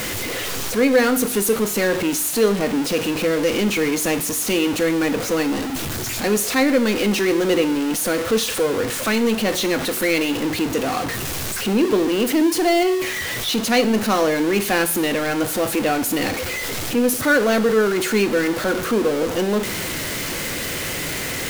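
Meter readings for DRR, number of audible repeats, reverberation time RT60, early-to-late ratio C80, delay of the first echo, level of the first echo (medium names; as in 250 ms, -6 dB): 10.0 dB, no echo, 0.60 s, 18.0 dB, no echo, no echo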